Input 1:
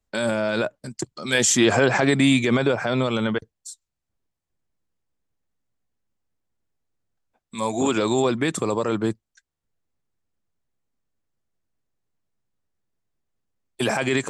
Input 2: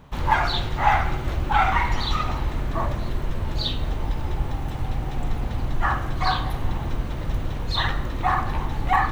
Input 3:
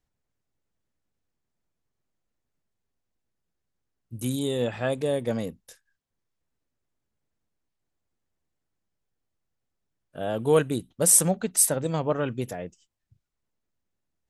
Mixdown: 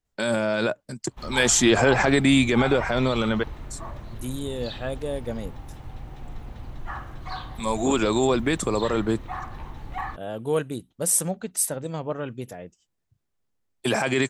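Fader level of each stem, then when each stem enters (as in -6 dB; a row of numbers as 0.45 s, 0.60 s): -0.5 dB, -12.0 dB, -4.0 dB; 0.05 s, 1.05 s, 0.00 s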